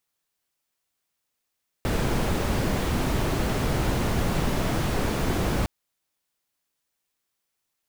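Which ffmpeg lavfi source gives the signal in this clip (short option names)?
-f lavfi -i "anoisesrc=c=brown:a=0.295:d=3.81:r=44100:seed=1"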